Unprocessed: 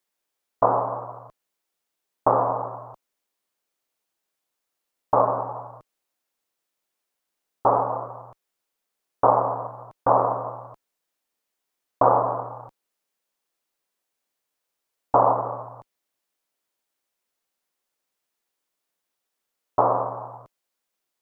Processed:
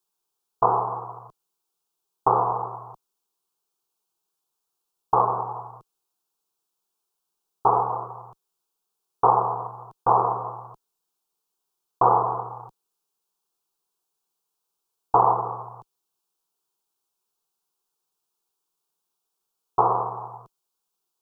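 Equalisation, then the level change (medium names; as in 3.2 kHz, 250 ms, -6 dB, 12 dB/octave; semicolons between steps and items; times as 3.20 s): static phaser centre 390 Hz, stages 8; +2.0 dB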